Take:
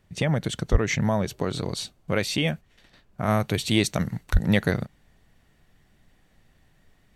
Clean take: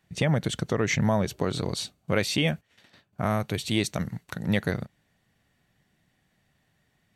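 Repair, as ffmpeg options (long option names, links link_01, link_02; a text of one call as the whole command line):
ffmpeg -i in.wav -filter_complex "[0:a]asplit=3[link_01][link_02][link_03];[link_01]afade=type=out:start_time=0.71:duration=0.02[link_04];[link_02]highpass=frequency=140:width=0.5412,highpass=frequency=140:width=1.3066,afade=type=in:start_time=0.71:duration=0.02,afade=type=out:start_time=0.83:duration=0.02[link_05];[link_03]afade=type=in:start_time=0.83:duration=0.02[link_06];[link_04][link_05][link_06]amix=inputs=3:normalize=0,asplit=3[link_07][link_08][link_09];[link_07]afade=type=out:start_time=4.32:duration=0.02[link_10];[link_08]highpass=frequency=140:width=0.5412,highpass=frequency=140:width=1.3066,afade=type=in:start_time=4.32:duration=0.02,afade=type=out:start_time=4.44:duration=0.02[link_11];[link_09]afade=type=in:start_time=4.44:duration=0.02[link_12];[link_10][link_11][link_12]amix=inputs=3:normalize=0,agate=range=-21dB:threshold=-54dB,asetnsamples=nb_out_samples=441:pad=0,asendcmd='3.28 volume volume -4dB',volume=0dB" out.wav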